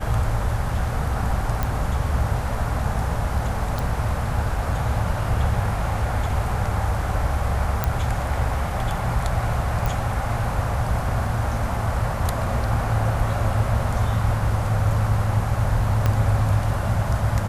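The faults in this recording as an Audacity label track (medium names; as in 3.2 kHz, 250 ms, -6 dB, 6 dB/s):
1.630000	1.630000	pop
3.790000	3.790000	pop
7.840000	7.840000	pop -7 dBFS
9.860000	9.860000	pop
16.060000	16.060000	pop -8 dBFS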